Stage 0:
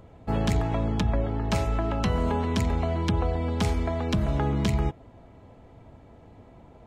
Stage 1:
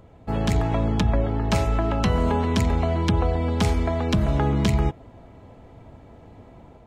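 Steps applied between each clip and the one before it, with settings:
automatic gain control gain up to 4 dB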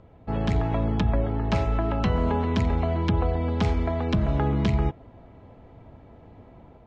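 high-frequency loss of the air 150 metres
level −2 dB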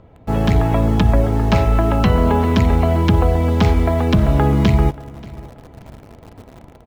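in parallel at −6 dB: bit reduction 7 bits
on the sum: repeating echo 582 ms, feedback 27%, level −21 dB
level +5.5 dB

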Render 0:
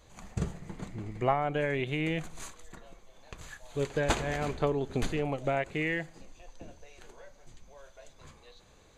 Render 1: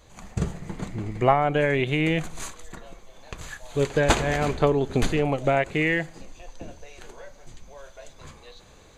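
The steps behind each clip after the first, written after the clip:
automatic gain control gain up to 3.5 dB
level +4.5 dB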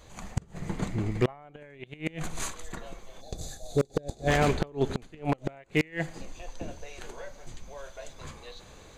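gain on a spectral selection 0:03.21–0:04.28, 830–3,400 Hz −18 dB
gate with flip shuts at −13 dBFS, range −29 dB
wave folding −17 dBFS
level +1.5 dB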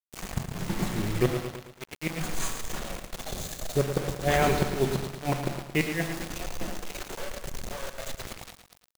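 rectangular room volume 1,000 cubic metres, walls furnished, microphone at 1 metre
bit reduction 6 bits
feedback echo at a low word length 112 ms, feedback 55%, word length 8 bits, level −8.5 dB

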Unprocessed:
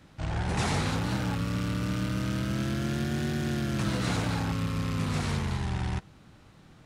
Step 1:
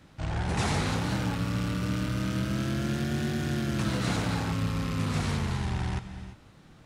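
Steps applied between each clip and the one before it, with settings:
reverb whose tail is shaped and stops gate 370 ms rising, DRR 10.5 dB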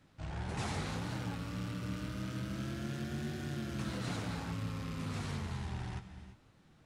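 flanger 1.7 Hz, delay 6.5 ms, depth 8.1 ms, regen −45%
level −6 dB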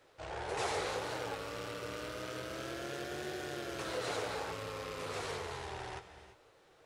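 low shelf with overshoot 310 Hz −12.5 dB, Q 3
level +3.5 dB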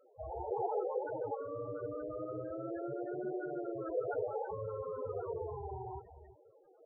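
spectral peaks only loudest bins 8
level +5 dB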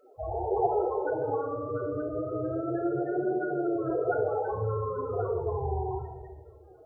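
rectangular room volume 2,800 cubic metres, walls furnished, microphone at 3.3 metres
level +6.5 dB

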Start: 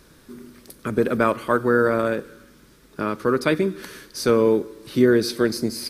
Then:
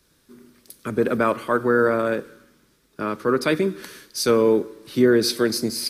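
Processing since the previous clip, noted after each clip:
in parallel at 0 dB: brickwall limiter −13 dBFS, peak gain reduction 8.5 dB
on the sum: low-shelf EQ 91 Hz −8.5 dB
multiband upward and downward expander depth 40%
level −4 dB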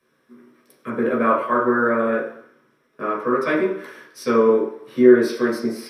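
convolution reverb RT60 0.55 s, pre-delay 3 ms, DRR −6 dB
level −13.5 dB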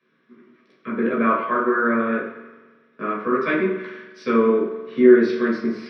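loudspeaker in its box 150–4,200 Hz, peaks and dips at 190 Hz +9 dB, 540 Hz −6 dB, 830 Hz −9 dB, 2,300 Hz +3 dB
mains-hum notches 60/120/180/240 Hz
spring reverb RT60 1.5 s, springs 43 ms, chirp 65 ms, DRR 10.5 dB

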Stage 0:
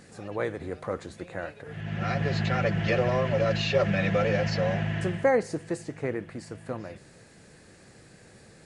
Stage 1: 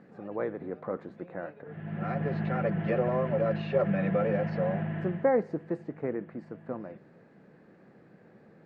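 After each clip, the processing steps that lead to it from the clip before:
low-pass filter 1,400 Hz 12 dB per octave
low shelf with overshoot 120 Hz −13 dB, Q 1.5
level −2.5 dB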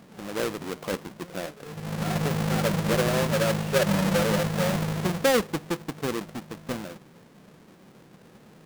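each half-wave held at its own peak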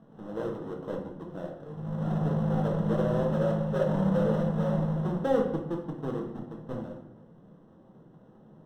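moving average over 19 samples
convolution reverb RT60 0.80 s, pre-delay 6 ms, DRR 0.5 dB
level −6 dB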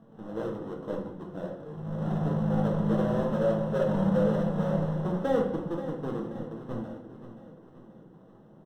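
flanger 0.3 Hz, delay 8.7 ms, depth 2.2 ms, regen +71%
on a send: repeating echo 530 ms, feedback 51%, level −12.5 dB
on the sum: level +4.5 dB

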